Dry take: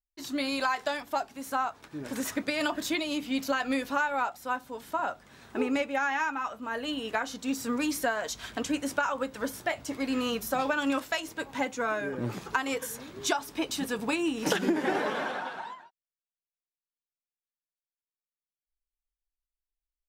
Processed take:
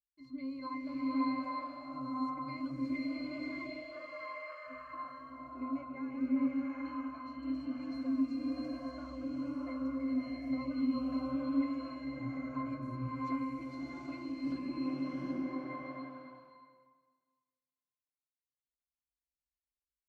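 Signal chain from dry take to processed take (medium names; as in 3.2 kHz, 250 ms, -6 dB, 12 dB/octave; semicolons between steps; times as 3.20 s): peaking EQ 510 Hz -10 dB 0.33 oct; 3.04–4.67 s: frequency shift +350 Hz; pitch-class resonator C, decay 0.29 s; swelling reverb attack 770 ms, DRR -6.5 dB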